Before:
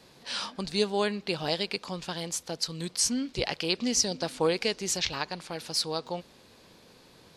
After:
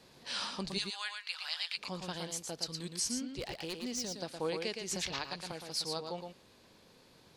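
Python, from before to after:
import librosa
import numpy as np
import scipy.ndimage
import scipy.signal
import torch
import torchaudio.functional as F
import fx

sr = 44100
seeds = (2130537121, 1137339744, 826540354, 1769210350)

y = fx.highpass(x, sr, hz=1200.0, slope=24, at=(0.77, 1.77), fade=0.02)
y = fx.rider(y, sr, range_db=10, speed_s=2.0)
y = fx.clip_hard(y, sr, threshold_db=-25.0, at=(3.39, 4.16))
y = y + 10.0 ** (-5.5 / 20.0) * np.pad(y, (int(115 * sr / 1000.0), 0))[:len(y)]
y = fx.band_squash(y, sr, depth_pct=100, at=(4.91, 5.52))
y = y * librosa.db_to_amplitude(-8.5)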